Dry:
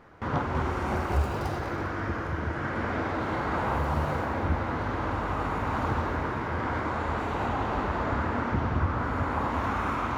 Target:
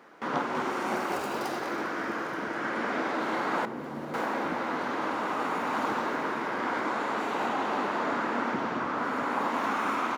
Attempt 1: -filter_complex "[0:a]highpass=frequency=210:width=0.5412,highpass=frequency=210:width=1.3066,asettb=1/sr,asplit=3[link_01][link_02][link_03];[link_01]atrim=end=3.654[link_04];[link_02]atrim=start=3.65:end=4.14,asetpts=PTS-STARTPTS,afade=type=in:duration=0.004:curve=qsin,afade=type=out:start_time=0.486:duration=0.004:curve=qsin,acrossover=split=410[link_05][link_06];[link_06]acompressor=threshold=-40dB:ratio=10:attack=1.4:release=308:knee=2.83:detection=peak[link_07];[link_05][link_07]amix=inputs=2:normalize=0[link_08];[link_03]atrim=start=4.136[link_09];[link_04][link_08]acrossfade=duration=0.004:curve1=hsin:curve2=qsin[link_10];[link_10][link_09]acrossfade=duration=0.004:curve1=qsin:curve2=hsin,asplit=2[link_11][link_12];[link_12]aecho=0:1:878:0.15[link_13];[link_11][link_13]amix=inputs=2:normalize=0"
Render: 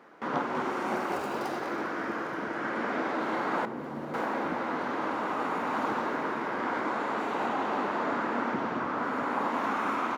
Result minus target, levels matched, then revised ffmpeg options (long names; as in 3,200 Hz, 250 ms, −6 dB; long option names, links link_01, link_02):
4,000 Hz band −3.0 dB
-filter_complex "[0:a]highpass=frequency=210:width=0.5412,highpass=frequency=210:width=1.3066,highshelf=frequency=2700:gain=6,asettb=1/sr,asplit=3[link_01][link_02][link_03];[link_01]atrim=end=3.654[link_04];[link_02]atrim=start=3.65:end=4.14,asetpts=PTS-STARTPTS,afade=type=in:duration=0.004:curve=qsin,afade=type=out:start_time=0.486:duration=0.004:curve=qsin,acrossover=split=410[link_05][link_06];[link_06]acompressor=threshold=-40dB:ratio=10:attack=1.4:release=308:knee=2.83:detection=peak[link_07];[link_05][link_07]amix=inputs=2:normalize=0[link_08];[link_03]atrim=start=4.136[link_09];[link_04][link_08]acrossfade=duration=0.004:curve1=hsin:curve2=qsin[link_10];[link_10][link_09]acrossfade=duration=0.004:curve1=qsin:curve2=hsin,asplit=2[link_11][link_12];[link_12]aecho=0:1:878:0.15[link_13];[link_11][link_13]amix=inputs=2:normalize=0"